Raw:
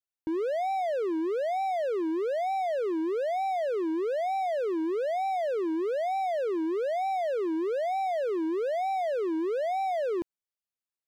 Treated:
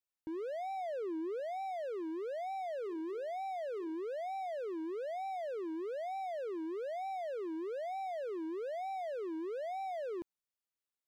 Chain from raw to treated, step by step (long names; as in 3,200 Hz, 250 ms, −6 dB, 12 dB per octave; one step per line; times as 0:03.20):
0:00.77–0:01.40: low-shelf EQ 230 Hz +10 dB
0:02.61–0:03.95: mains-hum notches 60/120/180/240/300/360/420 Hz
brickwall limiter −32 dBFS, peak gain reduction 10 dB
level −2.5 dB